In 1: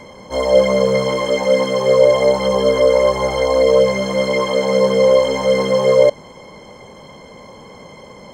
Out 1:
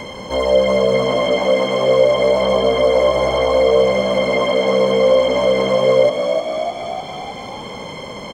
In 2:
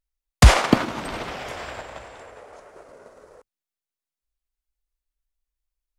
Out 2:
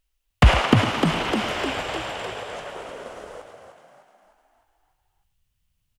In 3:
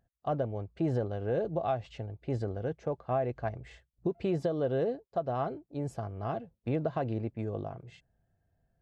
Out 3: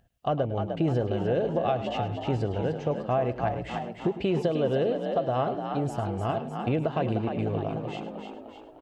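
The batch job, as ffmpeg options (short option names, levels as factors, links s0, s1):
-filter_complex "[0:a]equalizer=f=2900:w=3.5:g=8.5,asplit=2[s0][s1];[s1]asplit=6[s2][s3][s4][s5][s6][s7];[s2]adelay=303,afreqshift=53,volume=0.398[s8];[s3]adelay=606,afreqshift=106,volume=0.2[s9];[s4]adelay=909,afreqshift=159,volume=0.1[s10];[s5]adelay=1212,afreqshift=212,volume=0.0495[s11];[s6]adelay=1515,afreqshift=265,volume=0.0248[s12];[s7]adelay=1818,afreqshift=318,volume=0.0124[s13];[s8][s9][s10][s11][s12][s13]amix=inputs=6:normalize=0[s14];[s0][s14]amix=inputs=2:normalize=0,acompressor=threshold=0.01:ratio=1.5,asplit=2[s15][s16];[s16]aecho=0:1:105:0.211[s17];[s15][s17]amix=inputs=2:normalize=0,acrossover=split=2900[s18][s19];[s19]acompressor=threshold=0.00794:ratio=4:attack=1:release=60[s20];[s18][s20]amix=inputs=2:normalize=0,volume=2.82"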